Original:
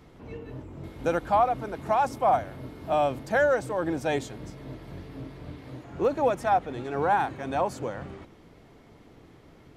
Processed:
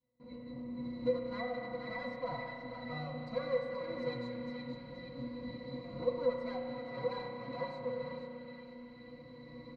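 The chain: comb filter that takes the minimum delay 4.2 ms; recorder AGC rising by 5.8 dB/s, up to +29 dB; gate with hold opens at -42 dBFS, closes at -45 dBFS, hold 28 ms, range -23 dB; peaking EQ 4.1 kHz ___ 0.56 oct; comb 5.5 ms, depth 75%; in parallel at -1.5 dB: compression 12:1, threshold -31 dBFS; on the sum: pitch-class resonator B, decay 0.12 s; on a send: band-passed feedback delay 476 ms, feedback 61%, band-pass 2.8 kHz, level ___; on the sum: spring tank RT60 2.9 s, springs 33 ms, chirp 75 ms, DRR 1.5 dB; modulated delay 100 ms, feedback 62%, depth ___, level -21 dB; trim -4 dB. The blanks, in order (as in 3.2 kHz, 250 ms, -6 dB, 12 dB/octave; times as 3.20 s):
+12 dB, -4 dB, 69 cents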